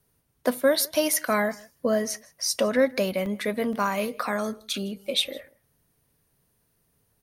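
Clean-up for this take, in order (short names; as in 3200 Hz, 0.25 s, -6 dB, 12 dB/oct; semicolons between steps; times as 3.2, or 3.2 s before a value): interpolate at 1.14/2.14/3.26/3.73, 1.5 ms; inverse comb 0.16 s -24 dB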